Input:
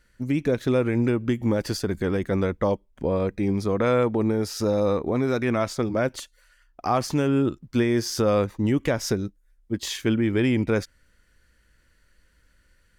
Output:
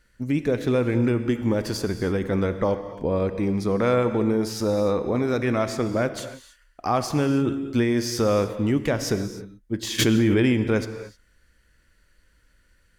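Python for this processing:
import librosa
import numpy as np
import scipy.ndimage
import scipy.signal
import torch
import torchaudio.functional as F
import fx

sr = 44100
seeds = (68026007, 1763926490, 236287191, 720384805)

y = fx.rev_gated(x, sr, seeds[0], gate_ms=330, shape='flat', drr_db=9.0)
y = fx.env_flatten(y, sr, amount_pct=100, at=(9.98, 10.52), fade=0.02)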